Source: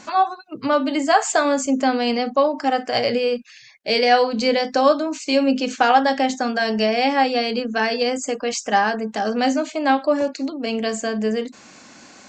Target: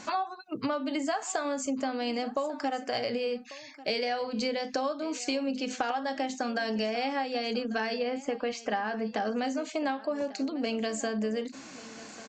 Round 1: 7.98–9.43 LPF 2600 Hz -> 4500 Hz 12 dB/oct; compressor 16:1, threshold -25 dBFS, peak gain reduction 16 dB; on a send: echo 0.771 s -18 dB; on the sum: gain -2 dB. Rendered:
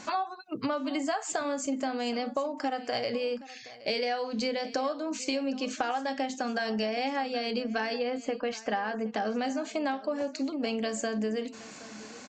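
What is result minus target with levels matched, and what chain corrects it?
echo 0.373 s early
7.98–9.43 LPF 2600 Hz -> 4500 Hz 12 dB/oct; compressor 16:1, threshold -25 dBFS, peak gain reduction 16 dB; on a send: echo 1.144 s -18 dB; on the sum: gain -2 dB

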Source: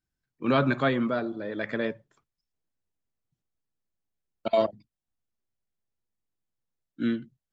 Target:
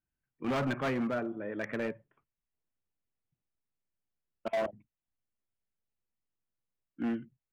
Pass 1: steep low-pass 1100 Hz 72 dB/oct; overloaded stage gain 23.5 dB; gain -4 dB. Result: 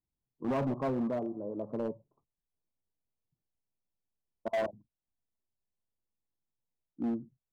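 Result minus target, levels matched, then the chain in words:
4000 Hz band -7.0 dB
steep low-pass 3000 Hz 72 dB/oct; overloaded stage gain 23.5 dB; gain -4 dB

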